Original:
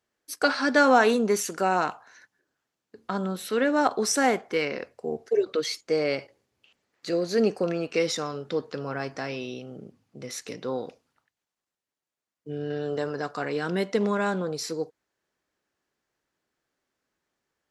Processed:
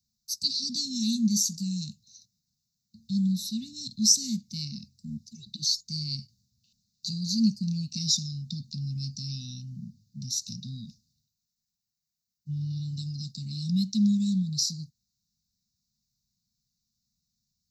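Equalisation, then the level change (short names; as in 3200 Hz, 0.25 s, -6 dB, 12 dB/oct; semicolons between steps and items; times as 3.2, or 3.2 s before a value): Chebyshev band-stop 220–3600 Hz, order 5; fixed phaser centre 2200 Hz, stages 8; +9.0 dB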